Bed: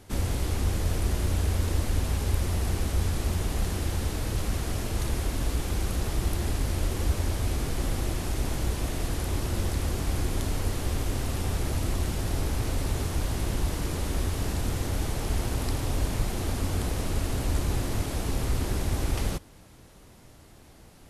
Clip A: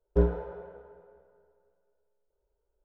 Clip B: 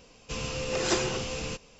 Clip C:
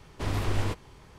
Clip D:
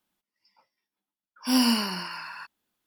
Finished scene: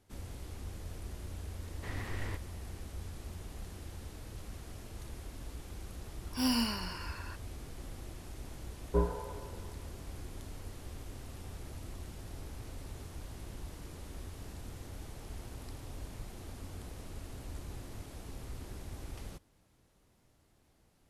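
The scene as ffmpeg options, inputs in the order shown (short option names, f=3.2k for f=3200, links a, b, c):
-filter_complex "[0:a]volume=-17dB[a];[3:a]equalizer=f=1.9k:w=4:g=12.5[b];[1:a]equalizer=f=1k:w=5.6:g=14[c];[b]atrim=end=1.18,asetpts=PTS-STARTPTS,volume=-12.5dB,afade=t=in:d=0.004:c=hsin,afade=t=out:st=1.176:d=0.004:c=hsin,adelay=1630[d];[4:a]atrim=end=2.86,asetpts=PTS-STARTPTS,volume=-8.5dB,afade=t=in:d=0.004:c=hsin,afade=t=out:st=2.856:d=0.004:c=hsin,adelay=4900[e];[c]atrim=end=2.84,asetpts=PTS-STARTPTS,volume=-6dB,afade=t=in:d=0.004:c=hsin,afade=t=out:st=2.836:d=0.004:c=hsin,adelay=8780[f];[a][d][e][f]amix=inputs=4:normalize=0"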